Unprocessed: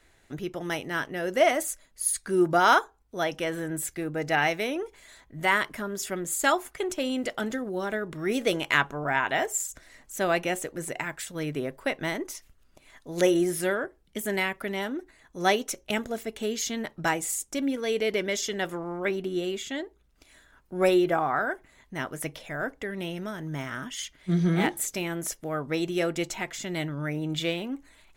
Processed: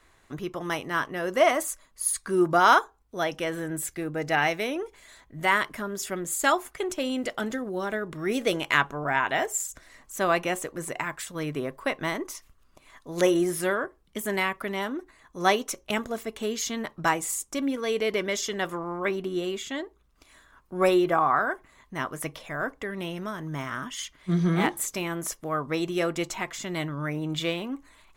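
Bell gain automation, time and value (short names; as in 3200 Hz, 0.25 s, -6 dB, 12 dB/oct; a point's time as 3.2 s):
bell 1100 Hz 0.32 oct
2.22 s +13 dB
2.81 s +4 dB
9.65 s +4 dB
10.14 s +11 dB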